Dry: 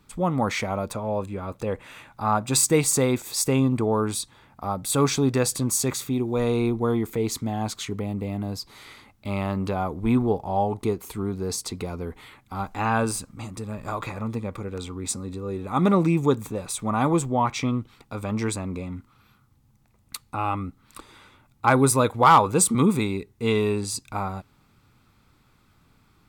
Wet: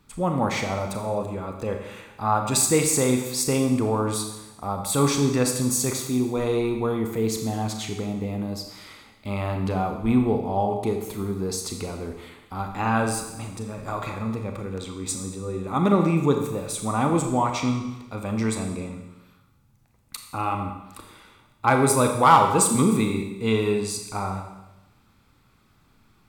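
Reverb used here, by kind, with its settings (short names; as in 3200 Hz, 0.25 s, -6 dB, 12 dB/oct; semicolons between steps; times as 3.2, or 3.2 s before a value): Schroeder reverb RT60 1 s, combs from 28 ms, DRR 4 dB; gain -1 dB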